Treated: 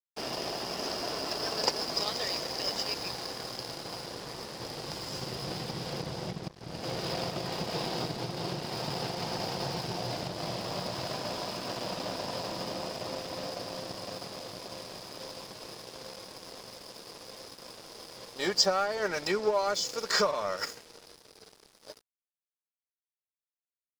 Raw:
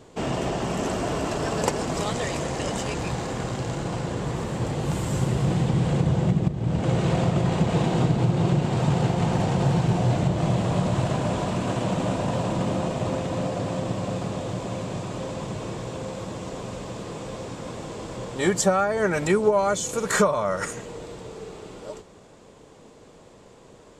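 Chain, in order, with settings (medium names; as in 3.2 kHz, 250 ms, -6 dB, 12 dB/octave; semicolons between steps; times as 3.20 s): four-pole ladder low-pass 5.2 kHz, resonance 85%; tone controls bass -12 dB, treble +1 dB; crossover distortion -49.5 dBFS; trim +7.5 dB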